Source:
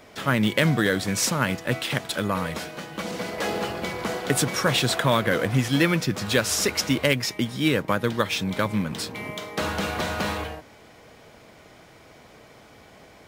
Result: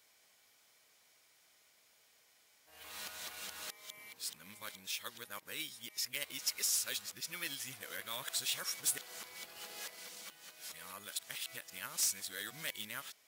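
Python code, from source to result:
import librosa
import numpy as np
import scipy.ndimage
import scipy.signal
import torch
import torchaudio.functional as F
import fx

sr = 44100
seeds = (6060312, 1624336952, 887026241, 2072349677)

y = np.flip(x).copy()
y = F.preemphasis(torch.from_numpy(y), 0.97).numpy()
y = 10.0 ** (-16.0 / 20.0) * (np.abs((y / 10.0 ** (-16.0 / 20.0) + 3.0) % 4.0 - 2.0) - 1.0)
y = y * librosa.db_to_amplitude(-7.0)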